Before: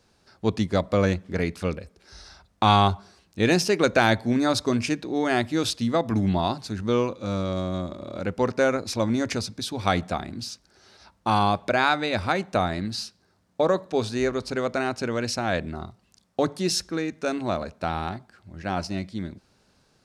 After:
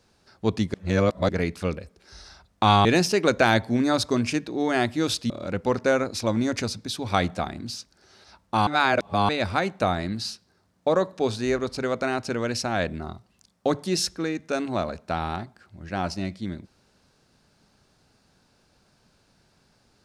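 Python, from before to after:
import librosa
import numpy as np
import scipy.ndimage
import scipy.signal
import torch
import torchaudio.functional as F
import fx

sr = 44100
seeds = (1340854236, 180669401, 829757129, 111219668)

y = fx.edit(x, sr, fx.reverse_span(start_s=0.74, length_s=0.55),
    fx.cut(start_s=2.85, length_s=0.56),
    fx.cut(start_s=5.86, length_s=2.17),
    fx.reverse_span(start_s=11.4, length_s=0.62), tone=tone)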